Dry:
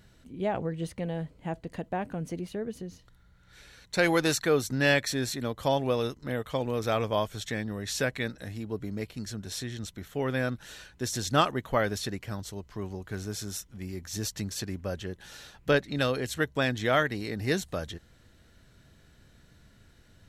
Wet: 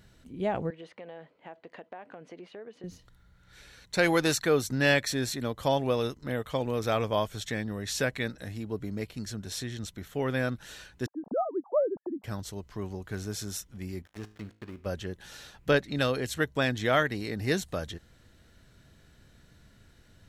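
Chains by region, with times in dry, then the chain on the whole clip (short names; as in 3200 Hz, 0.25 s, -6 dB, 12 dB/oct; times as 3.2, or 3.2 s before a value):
0.7–2.84 BPF 470–2900 Hz + compressor 4:1, threshold -40 dBFS
11.06–12.24 sine-wave speech + steep low-pass 900 Hz
14.02–14.86 switching dead time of 0.23 ms + tone controls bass -5 dB, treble -9 dB + resonator 53 Hz, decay 0.48 s, mix 50%
whole clip: dry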